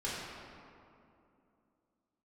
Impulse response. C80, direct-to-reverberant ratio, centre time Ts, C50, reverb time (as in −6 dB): 0.0 dB, −8.5 dB, 137 ms, −2.0 dB, 2.7 s